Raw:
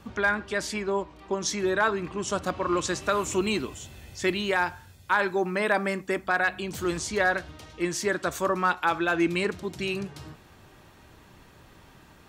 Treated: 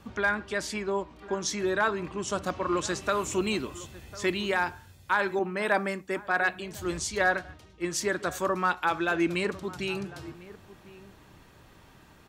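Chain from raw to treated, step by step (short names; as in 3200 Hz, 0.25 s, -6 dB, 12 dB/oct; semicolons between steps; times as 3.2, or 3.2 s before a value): outdoor echo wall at 180 m, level -17 dB; 5.39–8 three-band expander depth 70%; gain -2 dB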